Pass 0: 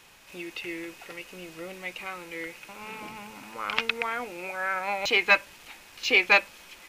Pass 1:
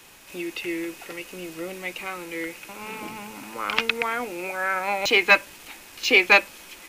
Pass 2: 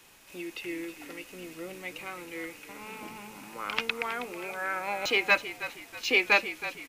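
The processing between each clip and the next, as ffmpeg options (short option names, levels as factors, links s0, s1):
-filter_complex "[0:a]equalizer=f=310:t=o:w=0.89:g=5,acrossover=split=260|1000|7100[s0][s1][s2][s3];[s3]acontrast=39[s4];[s0][s1][s2][s4]amix=inputs=4:normalize=0,volume=1.5"
-filter_complex "[0:a]asplit=5[s0][s1][s2][s3][s4];[s1]adelay=320,afreqshift=-42,volume=0.224[s5];[s2]adelay=640,afreqshift=-84,volume=0.0871[s6];[s3]adelay=960,afreqshift=-126,volume=0.0339[s7];[s4]adelay=1280,afreqshift=-168,volume=0.0133[s8];[s0][s5][s6][s7][s8]amix=inputs=5:normalize=0,volume=0.447"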